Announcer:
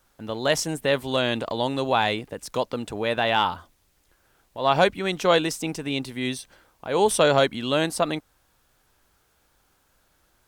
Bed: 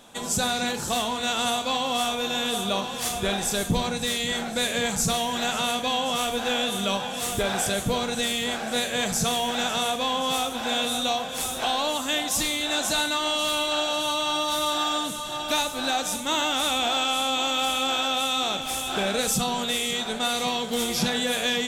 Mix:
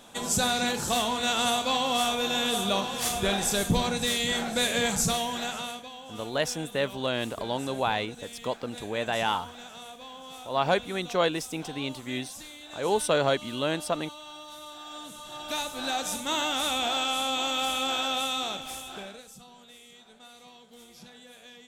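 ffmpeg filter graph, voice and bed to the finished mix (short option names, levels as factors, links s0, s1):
-filter_complex "[0:a]adelay=5900,volume=0.531[s0];[1:a]volume=5.31,afade=t=out:st=4.91:d=0.99:silence=0.125893,afade=t=in:st=14.83:d=1.26:silence=0.177828,afade=t=out:st=18.19:d=1.05:silence=0.0841395[s1];[s0][s1]amix=inputs=2:normalize=0"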